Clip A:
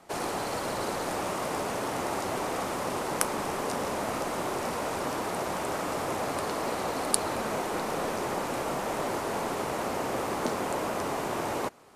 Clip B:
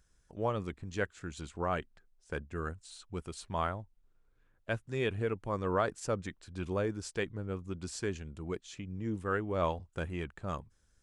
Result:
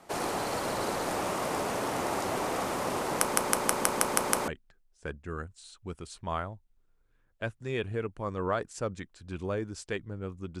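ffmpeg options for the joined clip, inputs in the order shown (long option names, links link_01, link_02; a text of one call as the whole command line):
ffmpeg -i cue0.wav -i cue1.wav -filter_complex "[0:a]apad=whole_dur=10.6,atrim=end=10.6,asplit=8[link_01][link_02][link_03][link_04][link_05][link_06][link_07][link_08];[link_01]atrim=end=3.362[link_09];[link_02]atrim=start=3.198:end=3.362[link_10];[link_03]atrim=start=3.198:end=3.362[link_11];[link_04]atrim=start=3.198:end=3.362[link_12];[link_05]atrim=start=3.198:end=3.362[link_13];[link_06]atrim=start=3.198:end=3.362[link_14];[link_07]atrim=start=3.198:end=3.362[link_15];[link_08]atrim=start=3.198:end=3.362[link_16];[1:a]atrim=start=1.748:end=7.87[link_17];[link_09][link_10]acrossfade=duration=0.004:curve1=hsin:curve2=hsin[link_18];[link_18][link_11]acrossfade=duration=0.004:curve1=hsin:curve2=hsin[link_19];[link_19][link_12]acrossfade=duration=0.004:curve1=hsin:curve2=hsin[link_20];[link_20][link_13]acrossfade=duration=0.004:curve1=hsin:curve2=hsin[link_21];[link_21][link_14]acrossfade=duration=0.004:curve1=hsin:curve2=hsin[link_22];[link_22][link_15]acrossfade=duration=0.004:curve1=hsin:curve2=hsin[link_23];[link_23][link_16]acrossfade=duration=0.004:curve1=hsin:curve2=hsin[link_24];[link_24][link_17]acrossfade=duration=0.004:curve1=hsin:curve2=hsin" out.wav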